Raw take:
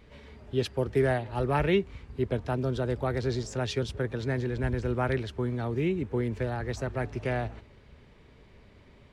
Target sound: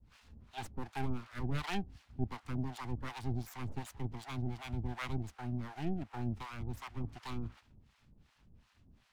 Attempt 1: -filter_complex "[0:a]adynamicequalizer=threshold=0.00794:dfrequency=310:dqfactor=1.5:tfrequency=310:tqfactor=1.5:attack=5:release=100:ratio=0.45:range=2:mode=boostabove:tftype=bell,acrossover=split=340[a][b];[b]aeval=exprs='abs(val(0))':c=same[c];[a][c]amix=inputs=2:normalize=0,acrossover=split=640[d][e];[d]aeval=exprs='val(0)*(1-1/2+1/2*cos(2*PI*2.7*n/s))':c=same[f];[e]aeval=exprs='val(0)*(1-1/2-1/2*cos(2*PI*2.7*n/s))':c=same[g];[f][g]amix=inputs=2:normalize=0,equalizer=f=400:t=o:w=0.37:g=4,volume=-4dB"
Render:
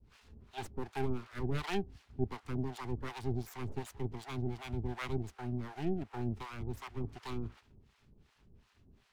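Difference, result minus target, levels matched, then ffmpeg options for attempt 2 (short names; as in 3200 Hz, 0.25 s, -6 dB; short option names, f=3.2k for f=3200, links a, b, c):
500 Hz band +6.0 dB
-filter_complex "[0:a]adynamicequalizer=threshold=0.00794:dfrequency=310:dqfactor=1.5:tfrequency=310:tqfactor=1.5:attack=5:release=100:ratio=0.45:range=2:mode=boostabove:tftype=bell,acrossover=split=340[a][b];[b]aeval=exprs='abs(val(0))':c=same[c];[a][c]amix=inputs=2:normalize=0,acrossover=split=640[d][e];[d]aeval=exprs='val(0)*(1-1/2+1/2*cos(2*PI*2.7*n/s))':c=same[f];[e]aeval=exprs='val(0)*(1-1/2-1/2*cos(2*PI*2.7*n/s))':c=same[g];[f][g]amix=inputs=2:normalize=0,equalizer=f=400:t=o:w=0.37:g=-5.5,volume=-4dB"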